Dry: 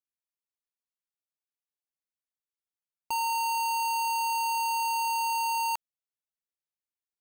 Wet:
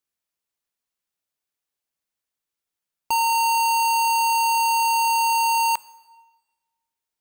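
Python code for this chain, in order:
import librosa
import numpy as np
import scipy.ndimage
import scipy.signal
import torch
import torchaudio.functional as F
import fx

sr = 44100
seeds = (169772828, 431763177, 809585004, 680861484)

y = fx.rev_plate(x, sr, seeds[0], rt60_s=1.3, hf_ratio=0.9, predelay_ms=0, drr_db=18.5)
y = F.gain(torch.from_numpy(y), 8.5).numpy()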